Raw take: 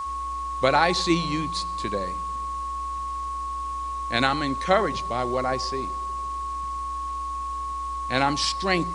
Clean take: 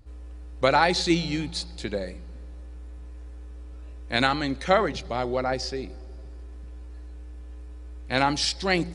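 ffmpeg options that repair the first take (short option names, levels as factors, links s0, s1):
-af "adeclick=t=4,bandreject=f=1100:w=30,afwtdn=0.0035"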